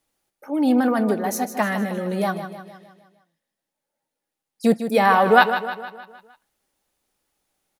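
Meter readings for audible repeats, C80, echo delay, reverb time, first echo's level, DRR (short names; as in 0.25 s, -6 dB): 5, none, 0.154 s, none, -10.0 dB, none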